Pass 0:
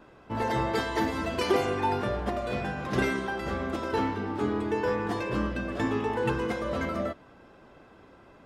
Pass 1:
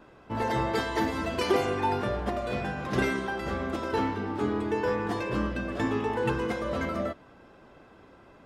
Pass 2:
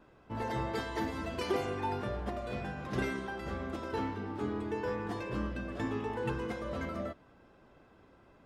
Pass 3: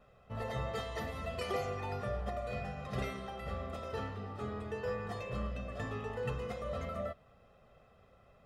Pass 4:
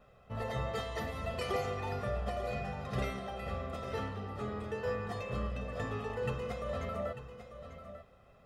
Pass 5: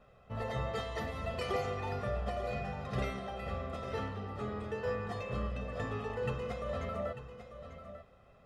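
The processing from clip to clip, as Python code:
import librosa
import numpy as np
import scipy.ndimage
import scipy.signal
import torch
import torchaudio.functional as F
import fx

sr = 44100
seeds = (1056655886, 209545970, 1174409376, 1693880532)

y1 = x
y2 = fx.low_shelf(y1, sr, hz=160.0, db=4.5)
y2 = F.gain(torch.from_numpy(y2), -8.0).numpy()
y3 = y2 + 0.84 * np.pad(y2, (int(1.6 * sr / 1000.0), 0))[:len(y2)]
y3 = F.gain(torch.from_numpy(y3), -4.0).numpy()
y4 = y3 + 10.0 ** (-11.5 / 20.0) * np.pad(y3, (int(894 * sr / 1000.0), 0))[:len(y3)]
y4 = F.gain(torch.from_numpy(y4), 1.5).numpy()
y5 = fx.high_shelf(y4, sr, hz=11000.0, db=-10.5)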